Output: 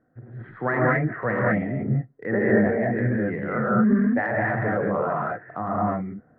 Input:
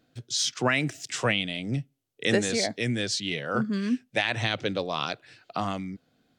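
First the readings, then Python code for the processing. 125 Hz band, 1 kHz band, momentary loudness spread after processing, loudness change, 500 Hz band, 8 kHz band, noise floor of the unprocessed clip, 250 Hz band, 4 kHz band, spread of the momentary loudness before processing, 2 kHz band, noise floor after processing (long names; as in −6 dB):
+7.0 dB, +6.5 dB, 11 LU, +4.0 dB, +6.5 dB, below −40 dB, −71 dBFS, +7.0 dB, below −35 dB, 9 LU, +3.0 dB, −59 dBFS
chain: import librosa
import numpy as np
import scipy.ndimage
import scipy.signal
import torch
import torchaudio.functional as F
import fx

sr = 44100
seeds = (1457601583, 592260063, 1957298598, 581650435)

y = scipy.signal.sosfilt(scipy.signal.cheby1(6, 1.0, 1900.0, 'lowpass', fs=sr, output='sos'), x)
y = fx.rev_gated(y, sr, seeds[0], gate_ms=250, shape='rising', drr_db=-5.0)
y = fx.transient(y, sr, attack_db=-2, sustain_db=5)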